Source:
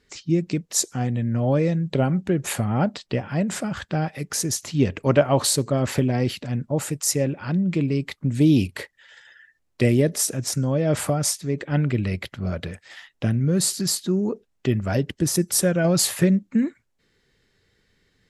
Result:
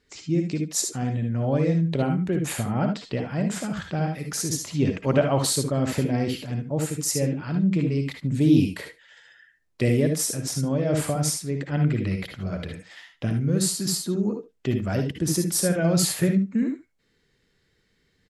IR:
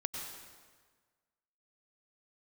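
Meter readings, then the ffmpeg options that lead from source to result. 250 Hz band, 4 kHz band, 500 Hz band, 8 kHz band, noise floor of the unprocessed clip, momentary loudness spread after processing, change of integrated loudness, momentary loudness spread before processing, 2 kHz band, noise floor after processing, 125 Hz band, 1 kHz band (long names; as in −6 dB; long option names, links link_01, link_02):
−1.0 dB, −2.5 dB, −2.5 dB, −2.5 dB, −70 dBFS, 8 LU, −2.0 dB, 9 LU, −2.5 dB, −68 dBFS, −1.5 dB, −2.5 dB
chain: -filter_complex "[0:a]aecho=1:1:72:0.141[link_01];[1:a]atrim=start_sample=2205,atrim=end_sample=6174,asetrate=74970,aresample=44100[link_02];[link_01][link_02]afir=irnorm=-1:irlink=0,volume=2dB"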